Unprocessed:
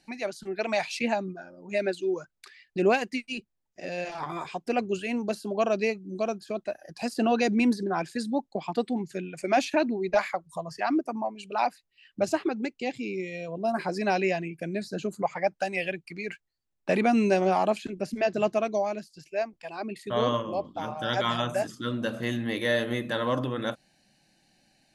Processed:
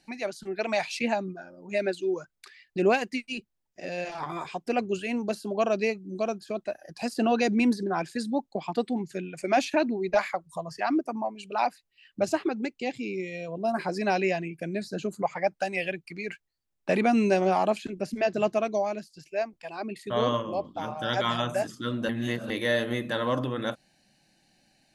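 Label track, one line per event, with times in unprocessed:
22.090000	22.500000	reverse

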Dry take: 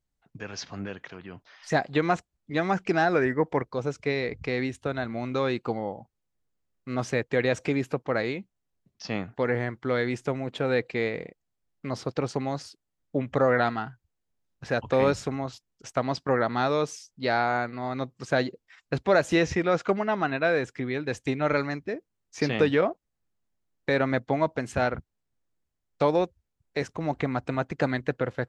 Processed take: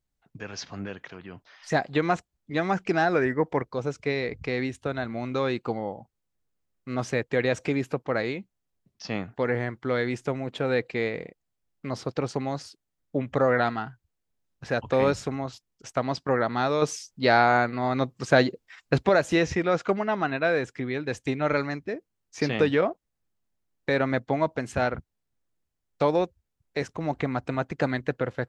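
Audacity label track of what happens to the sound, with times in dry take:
16.820000	19.090000	gain +5.5 dB

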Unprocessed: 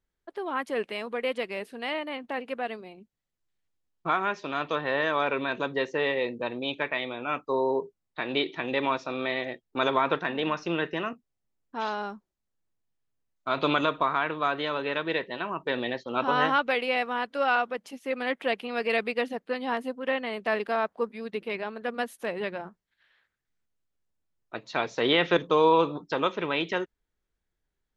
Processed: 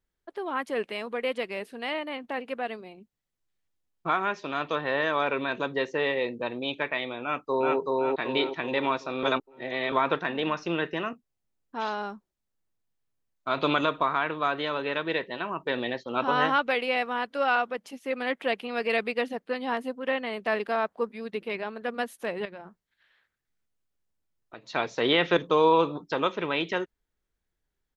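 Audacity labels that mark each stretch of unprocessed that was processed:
7.220000	7.770000	echo throw 380 ms, feedback 45%, level -0.5 dB
9.230000	9.920000	reverse
22.450000	24.690000	compression 2.5:1, threshold -42 dBFS

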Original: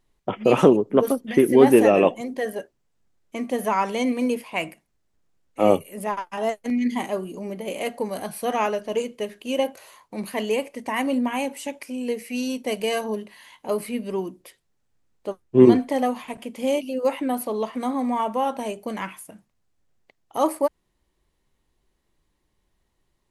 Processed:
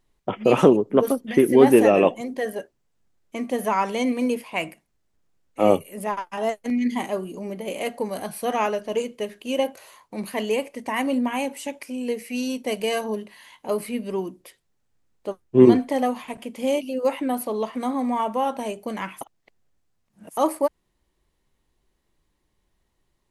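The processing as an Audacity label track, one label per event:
19.210000	20.370000	reverse

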